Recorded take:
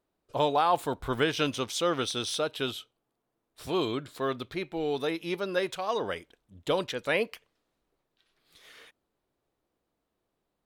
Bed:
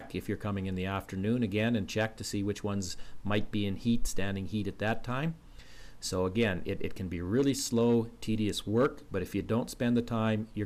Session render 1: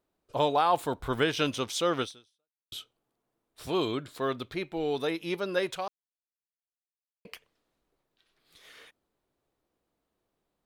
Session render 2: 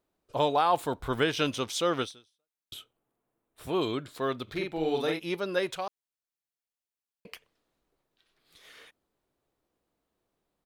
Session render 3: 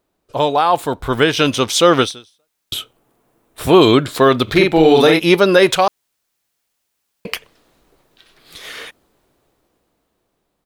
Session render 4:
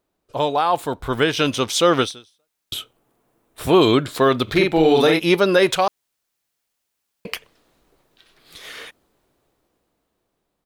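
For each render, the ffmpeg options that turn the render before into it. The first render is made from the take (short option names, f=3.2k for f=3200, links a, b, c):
-filter_complex "[0:a]asplit=4[a][b][c][d];[a]atrim=end=2.72,asetpts=PTS-STARTPTS,afade=t=out:st=2.02:d=0.7:c=exp[e];[b]atrim=start=2.72:end=5.88,asetpts=PTS-STARTPTS,afade=t=in:d=0.004:c=hsin,afade=t=out:st=3.156:d=0.004:c=hsin[f];[c]atrim=start=5.88:end=7.25,asetpts=PTS-STARTPTS,volume=0[g];[d]atrim=start=7.25,asetpts=PTS-STARTPTS,afade=t=in:d=0.004:c=hsin[h];[e][f][g][h]concat=n=4:v=0:a=1"
-filter_complex "[0:a]asettb=1/sr,asplit=3[a][b][c];[a]atrim=end=2.744[d];[b]atrim=start=2.74:end=3.82,asetpts=PTS-STARTPTS,afade=t=in:d=0.004:c=qsin,afade=t=out:st=1.076:d=0.004:c=qsin,equalizer=f=5k:w=1.3:g=-9.5[e];[c]atrim=start=3.816[f];[d][e]acrossfade=d=0.004:c1=hsin:c2=qsin[g];[g][f]acrossfade=d=0.004:c1=qsin:c2=hsin,asplit=3[h][i][j];[h]afade=t=out:st=4.47:d=0.02[k];[i]asplit=2[l][m];[m]adelay=44,volume=-3dB[n];[l][n]amix=inputs=2:normalize=0,afade=t=in:st=4.47:d=0.02,afade=t=out:st=5.18:d=0.02[o];[j]afade=t=in:st=5.18:d=0.02[p];[k][o][p]amix=inputs=3:normalize=0"
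-af "dynaudnorm=f=320:g=11:m=12dB,alimiter=level_in=9.5dB:limit=-1dB:release=50:level=0:latency=1"
-af "volume=-4.5dB"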